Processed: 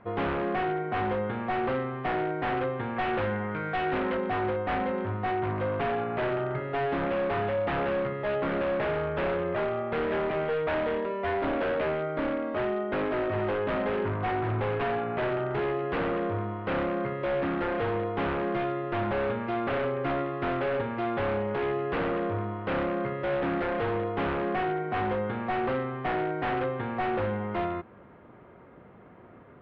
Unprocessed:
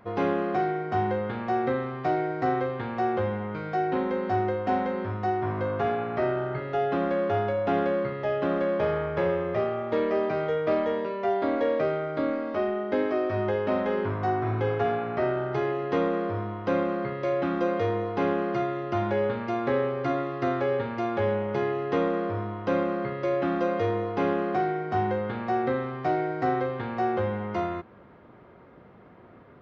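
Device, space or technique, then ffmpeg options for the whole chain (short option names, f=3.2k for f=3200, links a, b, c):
synthesiser wavefolder: -filter_complex "[0:a]asettb=1/sr,asplit=3[a][b][c];[a]atrim=end=2.964[d];[b]atrim=start=2.96:end=4.17,asetpts=PTS-STARTPTS,afade=t=in:d=0.004:c=qsin,afade=t=out:st=1.206:d=0.004:c=qsin,equalizer=f=1.7k:t=o:w=0.86:g=7[e];[c]atrim=start=4.166[f];[d][e]acrossfade=d=0.004:c1=hsin:c2=qsin[g];[g][f]acrossfade=d=0.004:c1=qsin:c2=hsin,aeval=exprs='0.0708*(abs(mod(val(0)/0.0708+3,4)-2)-1)':c=same,lowpass=f=3.3k:w=0.5412,lowpass=f=3.3k:w=1.3066"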